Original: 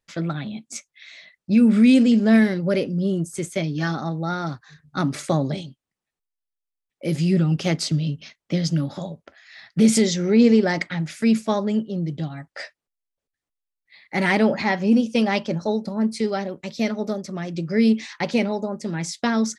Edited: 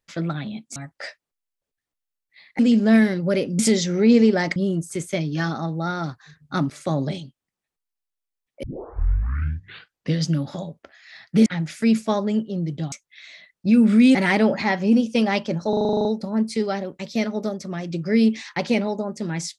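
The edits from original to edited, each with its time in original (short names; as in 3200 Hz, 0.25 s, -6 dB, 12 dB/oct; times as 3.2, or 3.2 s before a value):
0.76–1.99 swap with 12.32–14.15
5.13–5.45 fade in, from -13 dB
7.06 tape start 1.63 s
9.89–10.86 move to 2.99
15.69 stutter 0.04 s, 10 plays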